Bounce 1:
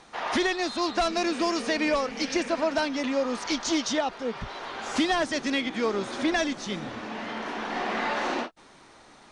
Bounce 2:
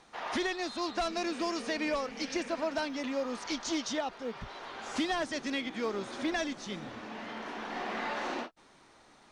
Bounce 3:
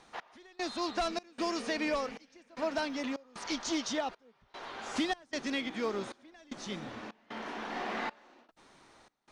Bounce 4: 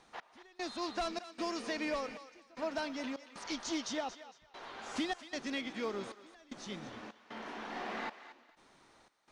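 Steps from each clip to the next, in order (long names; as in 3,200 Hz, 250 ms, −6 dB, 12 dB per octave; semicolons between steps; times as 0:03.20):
floating-point word with a short mantissa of 6 bits; level −7 dB
gate pattern "x..xxx.xxx" 76 BPM −24 dB
feedback echo with a high-pass in the loop 228 ms, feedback 27%, high-pass 810 Hz, level −12 dB; level −4 dB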